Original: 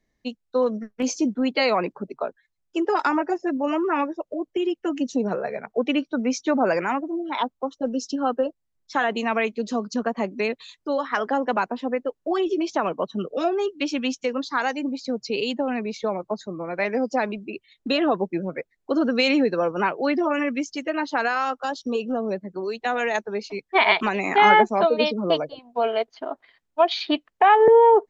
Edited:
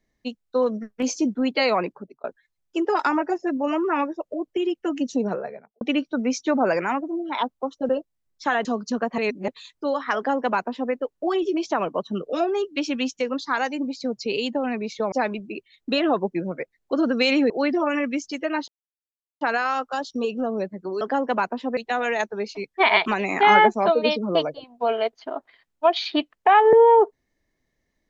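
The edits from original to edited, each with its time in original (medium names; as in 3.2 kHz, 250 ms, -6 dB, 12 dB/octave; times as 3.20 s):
1.80–2.24 s: fade out
5.22–5.81 s: studio fade out
7.89–8.38 s: delete
9.14–9.69 s: delete
10.22–10.52 s: reverse
11.20–11.96 s: copy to 22.72 s
16.16–17.10 s: delete
19.48–19.94 s: delete
21.12 s: insert silence 0.73 s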